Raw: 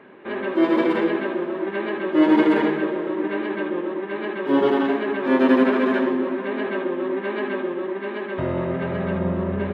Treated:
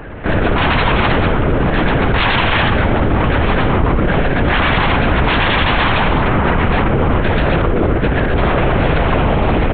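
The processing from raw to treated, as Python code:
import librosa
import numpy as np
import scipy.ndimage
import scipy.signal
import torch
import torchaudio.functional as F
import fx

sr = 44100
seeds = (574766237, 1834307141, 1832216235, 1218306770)

y = fx.rattle_buzz(x, sr, strikes_db=-29.0, level_db=-29.0)
y = fx.doubler(y, sr, ms=29.0, db=-4, at=(3.38, 4.24))
y = fx.high_shelf_res(y, sr, hz=1800.0, db=-12.5, q=3.0, at=(6.22, 6.87))
y = y + 10.0 ** (-17.0 / 20.0) * np.pad(y, (int(640 * sr / 1000.0), 0))[:len(y)]
y = fx.fold_sine(y, sr, drive_db=18, ceiling_db=-5.5)
y = fx.lpc_vocoder(y, sr, seeds[0], excitation='whisper', order=8)
y = fx.wow_flutter(y, sr, seeds[1], rate_hz=2.1, depth_cents=23.0)
y = F.gain(torch.from_numpy(y), -4.5).numpy()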